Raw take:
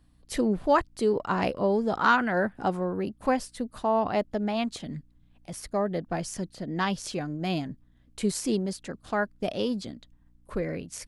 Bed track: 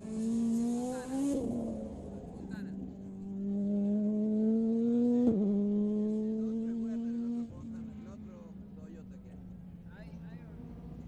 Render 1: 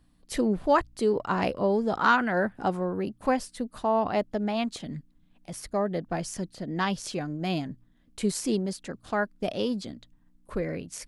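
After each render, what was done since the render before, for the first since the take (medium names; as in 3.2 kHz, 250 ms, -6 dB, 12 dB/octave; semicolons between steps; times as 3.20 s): de-hum 60 Hz, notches 2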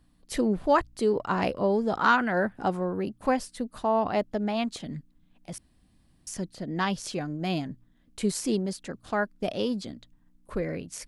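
5.58–6.27 s: room tone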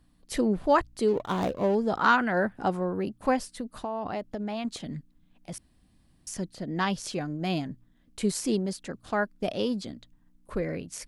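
1.08–1.75 s: median filter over 25 samples; 3.43–4.65 s: compression 12:1, threshold -28 dBFS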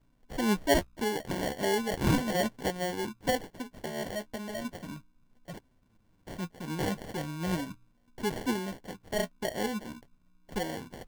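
flange 0.36 Hz, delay 7 ms, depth 7.2 ms, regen +30%; sample-and-hold 35×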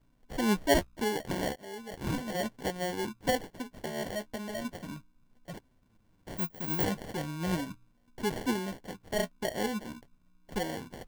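1.56–3.02 s: fade in, from -21.5 dB; 6.37–6.84 s: careless resampling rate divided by 2×, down filtered, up zero stuff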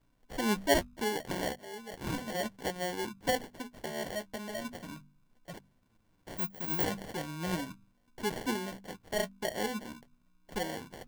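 bass shelf 430 Hz -4 dB; de-hum 48.69 Hz, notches 5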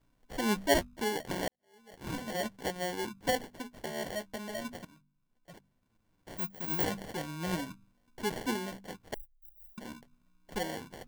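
1.48–2.22 s: fade in quadratic; 4.85–6.78 s: fade in, from -16.5 dB; 9.14–9.78 s: inverse Chebyshev band-stop 130–8900 Hz, stop band 60 dB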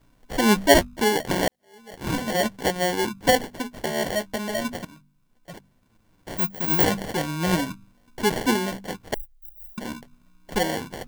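trim +11.5 dB; peak limiter -3 dBFS, peak gain reduction 1.5 dB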